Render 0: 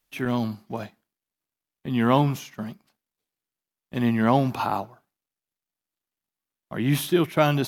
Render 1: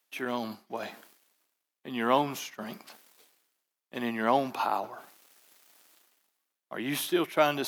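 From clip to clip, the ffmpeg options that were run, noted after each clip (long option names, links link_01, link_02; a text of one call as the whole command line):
ffmpeg -i in.wav -af "highpass=370,areverse,acompressor=mode=upward:threshold=-30dB:ratio=2.5,areverse,volume=-2.5dB" out.wav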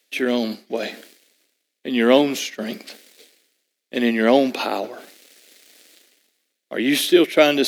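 ffmpeg -i in.wav -af "equalizer=frequency=125:width_type=o:width=1:gain=-6,equalizer=frequency=250:width_type=o:width=1:gain=9,equalizer=frequency=500:width_type=o:width=1:gain=11,equalizer=frequency=1000:width_type=o:width=1:gain=-11,equalizer=frequency=2000:width_type=o:width=1:gain=8,equalizer=frequency=4000:width_type=o:width=1:gain=8,equalizer=frequency=8000:width_type=o:width=1:gain=5,volume=4.5dB" out.wav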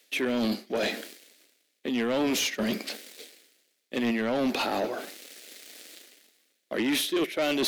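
ffmpeg -i in.wav -af "areverse,acompressor=threshold=-23dB:ratio=8,areverse,asoftclip=type=tanh:threshold=-25dB,volume=3.5dB" out.wav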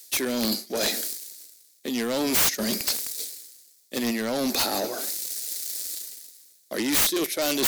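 ffmpeg -i in.wav -af "aexciter=amount=4.2:drive=8.1:freq=4200,aeval=exprs='(mod(5.62*val(0)+1,2)-1)/5.62':channel_layout=same" out.wav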